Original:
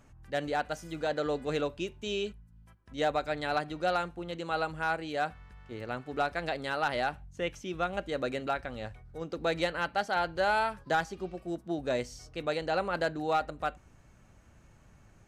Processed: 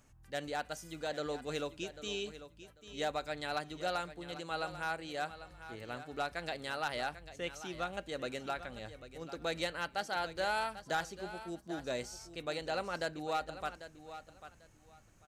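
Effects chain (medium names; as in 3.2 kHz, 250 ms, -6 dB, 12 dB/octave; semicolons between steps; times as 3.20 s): treble shelf 3.8 kHz +11 dB; feedback delay 794 ms, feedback 20%, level -13 dB; trim -7.5 dB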